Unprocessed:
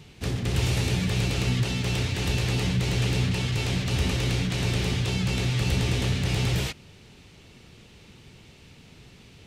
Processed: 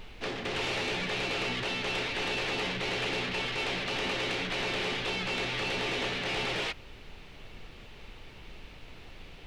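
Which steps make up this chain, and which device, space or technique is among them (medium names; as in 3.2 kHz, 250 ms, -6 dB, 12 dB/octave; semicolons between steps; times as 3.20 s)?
aircraft cabin announcement (band-pass 450–3400 Hz; saturation -28.5 dBFS, distortion -18 dB; brown noise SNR 13 dB); trim +4 dB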